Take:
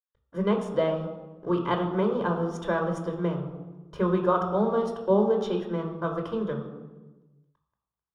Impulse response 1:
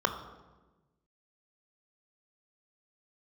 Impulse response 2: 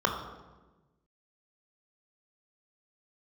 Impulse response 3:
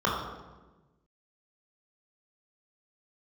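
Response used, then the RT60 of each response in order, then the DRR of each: 2; 1.2, 1.2, 1.2 s; 6.0, 2.0, -4.5 dB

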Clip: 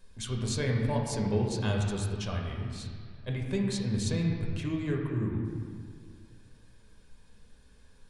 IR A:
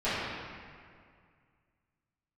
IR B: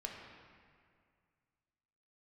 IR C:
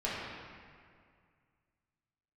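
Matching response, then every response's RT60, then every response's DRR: B; 2.1, 2.1, 2.1 s; -16.0, -0.5, -8.5 dB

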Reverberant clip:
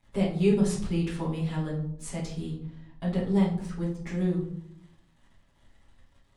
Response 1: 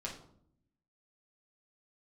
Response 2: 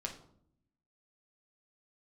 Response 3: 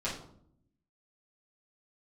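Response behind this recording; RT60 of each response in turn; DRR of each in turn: 3; 0.65, 0.65, 0.65 s; -3.0, 1.0, -9.0 dB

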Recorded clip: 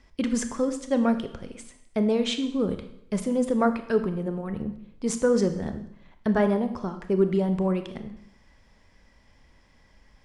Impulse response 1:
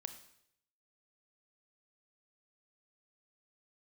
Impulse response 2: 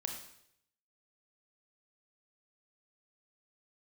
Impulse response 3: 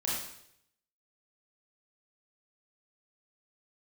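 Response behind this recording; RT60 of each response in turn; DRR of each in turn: 1; 0.70, 0.70, 0.70 s; 8.5, 2.5, -6.5 dB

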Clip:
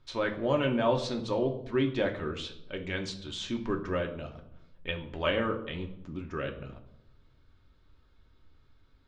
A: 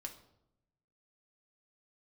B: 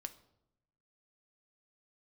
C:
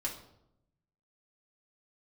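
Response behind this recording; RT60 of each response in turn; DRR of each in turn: A; 0.80, 0.85, 0.80 s; 2.5, 8.0, -3.0 dB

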